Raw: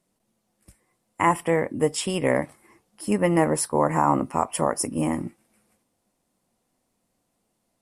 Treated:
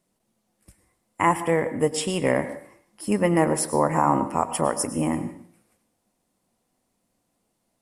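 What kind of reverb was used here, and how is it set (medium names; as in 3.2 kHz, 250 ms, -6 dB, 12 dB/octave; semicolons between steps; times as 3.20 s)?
plate-style reverb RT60 0.53 s, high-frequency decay 0.9×, pre-delay 90 ms, DRR 12 dB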